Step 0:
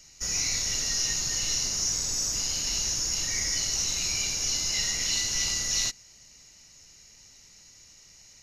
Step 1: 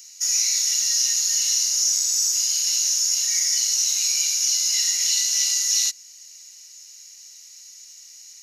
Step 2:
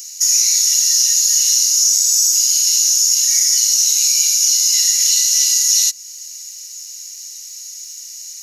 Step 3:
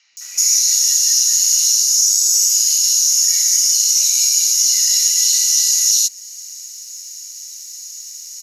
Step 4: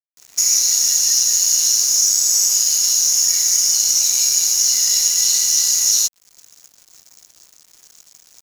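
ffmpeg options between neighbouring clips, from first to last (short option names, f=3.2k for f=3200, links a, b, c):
-filter_complex "[0:a]aderivative,asplit=2[a][b];[b]alimiter=level_in=1dB:limit=-24dB:level=0:latency=1:release=431,volume=-1dB,volume=-2dB[c];[a][c]amix=inputs=2:normalize=0,volume=6dB"
-af "acompressor=threshold=-30dB:ratio=1.5,crystalizer=i=2.5:c=0,volume=3dB"
-filter_complex "[0:a]acrossover=split=670|2700[a][b][c];[a]adelay=120[d];[c]adelay=170[e];[d][b][e]amix=inputs=3:normalize=0"
-af "aeval=exprs='sgn(val(0))*max(abs(val(0))-0.0376,0)':c=same"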